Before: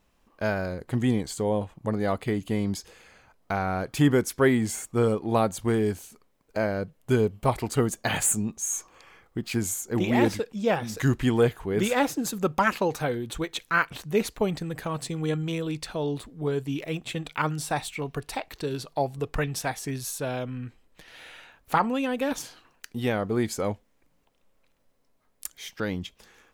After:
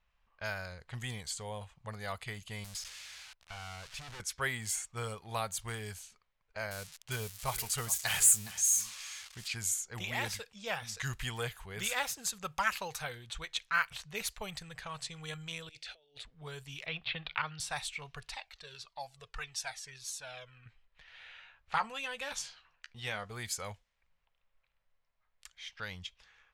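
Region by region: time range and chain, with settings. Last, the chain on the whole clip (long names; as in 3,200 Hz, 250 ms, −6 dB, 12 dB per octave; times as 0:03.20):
0:02.64–0:04.20: spike at every zero crossing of −24 dBFS + tube saturation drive 31 dB, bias 0.75
0:06.71–0:09.48: spike at every zero crossing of −27 dBFS + single-tap delay 414 ms −16 dB
0:15.69–0:16.25: high-pass filter 270 Hz 6 dB per octave + compressor whose output falls as the input rises −38 dBFS, ratio −0.5 + phaser with its sweep stopped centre 430 Hz, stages 4
0:16.86–0:17.60: Butterworth low-pass 4,500 Hz 48 dB per octave + multiband upward and downward compressor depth 100%
0:18.34–0:20.66: bass and treble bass −7 dB, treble +6 dB + flanger whose copies keep moving one way falling 1.7 Hz
0:21.27–0:23.30: low-pass filter 9,200 Hz + double-tracking delay 14 ms −9 dB
whole clip: low-pass that shuts in the quiet parts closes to 2,500 Hz, open at −22.5 dBFS; guitar amp tone stack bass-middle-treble 10-0-10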